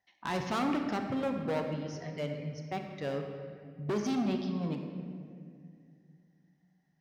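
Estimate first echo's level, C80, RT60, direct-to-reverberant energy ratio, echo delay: no echo audible, 6.0 dB, 2.2 s, 4.0 dB, no echo audible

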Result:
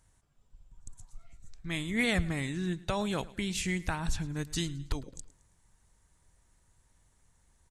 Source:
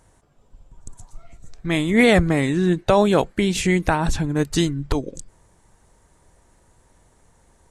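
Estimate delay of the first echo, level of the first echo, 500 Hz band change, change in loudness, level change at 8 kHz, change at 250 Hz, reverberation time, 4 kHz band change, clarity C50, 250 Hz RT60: 108 ms, −20.5 dB, −18.5 dB, −13.5 dB, −8.0 dB, −14.5 dB, no reverb audible, −9.0 dB, no reverb audible, no reverb audible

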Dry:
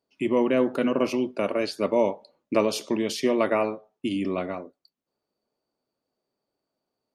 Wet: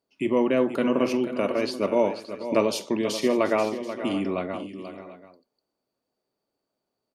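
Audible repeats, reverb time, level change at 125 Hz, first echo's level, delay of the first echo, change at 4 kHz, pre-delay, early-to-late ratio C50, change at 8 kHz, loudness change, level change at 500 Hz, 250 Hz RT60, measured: 4, no reverb audible, +0.5 dB, −18.5 dB, 45 ms, +0.5 dB, no reverb audible, no reverb audible, +0.5 dB, +0.5 dB, +0.5 dB, no reverb audible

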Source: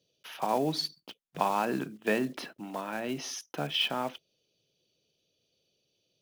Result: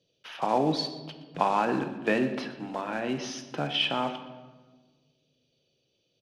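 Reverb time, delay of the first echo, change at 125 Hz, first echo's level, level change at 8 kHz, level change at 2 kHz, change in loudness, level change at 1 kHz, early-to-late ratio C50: 1.4 s, 120 ms, +4.0 dB, −18.0 dB, −3.0 dB, +3.0 dB, +3.0 dB, +3.5 dB, 9.5 dB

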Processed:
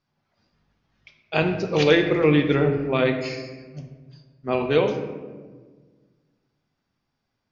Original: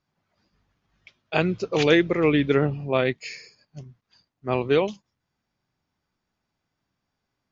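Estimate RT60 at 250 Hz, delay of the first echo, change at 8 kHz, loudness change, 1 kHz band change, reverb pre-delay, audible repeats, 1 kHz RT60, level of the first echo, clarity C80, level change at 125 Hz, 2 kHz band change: 2.0 s, no echo audible, can't be measured, +1.0 dB, +1.0 dB, 4 ms, no echo audible, 1.3 s, no echo audible, 8.5 dB, +2.5 dB, +1.0 dB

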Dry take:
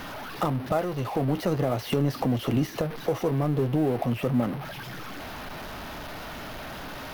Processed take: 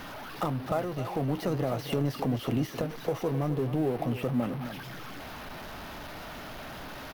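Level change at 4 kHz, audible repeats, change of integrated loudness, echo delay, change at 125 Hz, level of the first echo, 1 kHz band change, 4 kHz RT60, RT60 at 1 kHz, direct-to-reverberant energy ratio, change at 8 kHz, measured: −3.5 dB, 1, −4.0 dB, 263 ms, −4.0 dB, −11.5 dB, −3.5 dB, no reverb audible, no reverb audible, no reverb audible, −3.5 dB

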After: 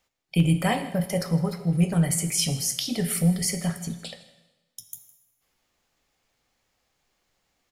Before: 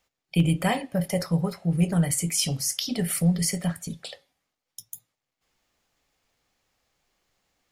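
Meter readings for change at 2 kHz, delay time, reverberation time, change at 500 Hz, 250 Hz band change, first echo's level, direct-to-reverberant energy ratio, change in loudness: +0.5 dB, 159 ms, 1.1 s, +0.5 dB, +0.5 dB, −20.5 dB, 9.0 dB, +0.5 dB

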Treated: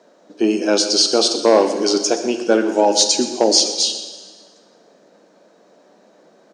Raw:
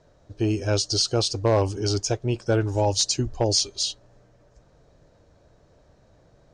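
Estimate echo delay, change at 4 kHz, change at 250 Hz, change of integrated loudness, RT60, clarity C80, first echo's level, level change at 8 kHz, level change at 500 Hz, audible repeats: 125 ms, +8.5 dB, +9.0 dB, +7.5 dB, 1.5 s, 9.0 dB, −15.5 dB, +8.5 dB, +9.0 dB, 1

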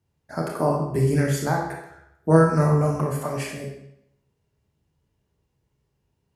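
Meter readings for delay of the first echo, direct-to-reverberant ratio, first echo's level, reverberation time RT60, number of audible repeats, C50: no echo audible, −0.5 dB, no echo audible, 0.75 s, no echo audible, 3.0 dB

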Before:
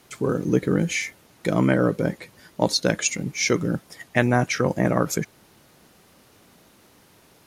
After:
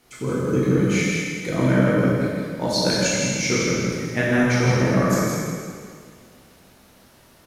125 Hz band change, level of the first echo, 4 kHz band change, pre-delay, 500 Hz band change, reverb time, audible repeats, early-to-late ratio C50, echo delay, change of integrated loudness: +4.0 dB, −4.0 dB, +3.0 dB, 7 ms, +2.0 dB, 2.0 s, 1, −3.5 dB, 162 ms, +2.5 dB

